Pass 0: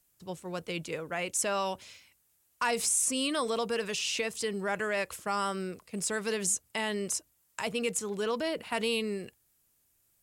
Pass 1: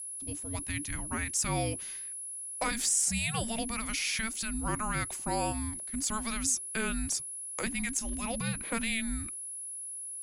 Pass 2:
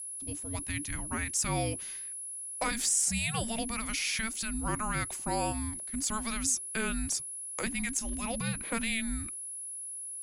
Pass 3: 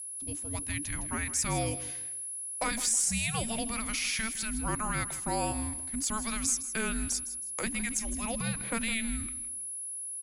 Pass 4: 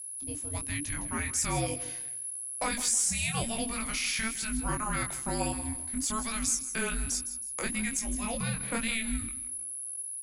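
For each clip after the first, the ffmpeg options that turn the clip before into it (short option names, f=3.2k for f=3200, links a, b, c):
-af "aeval=exprs='val(0)+0.0126*sin(2*PI*11000*n/s)':c=same,afreqshift=-450,afftfilt=real='re*lt(hypot(re,im),0.282)':imag='im*lt(hypot(re,im),0.282)':win_size=1024:overlap=0.75"
-af anull
-af "aecho=1:1:160|320|480:0.188|0.0565|0.017"
-af "flanger=delay=20:depth=3.8:speed=1.1,volume=3.5dB"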